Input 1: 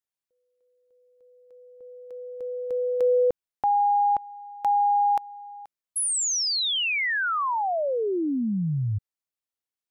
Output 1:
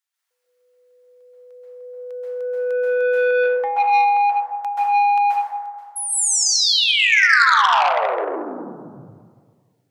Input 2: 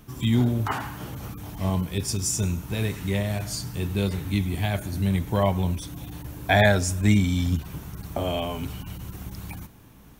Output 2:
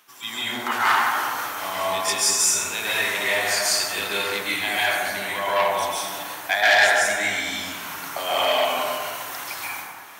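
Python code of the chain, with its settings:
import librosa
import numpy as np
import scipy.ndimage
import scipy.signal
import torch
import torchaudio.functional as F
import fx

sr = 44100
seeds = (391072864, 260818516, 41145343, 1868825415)

y = fx.rider(x, sr, range_db=4, speed_s=0.5)
y = scipy.signal.sosfilt(scipy.signal.butter(2, 1100.0, 'highpass', fs=sr, output='sos'), y)
y = fx.high_shelf(y, sr, hz=8500.0, db=-5.0)
y = fx.rev_plate(y, sr, seeds[0], rt60_s=1.8, hf_ratio=0.4, predelay_ms=120, drr_db=-9.5)
y = fx.transformer_sat(y, sr, knee_hz=2400.0)
y = y * 10.0 ** (5.0 / 20.0)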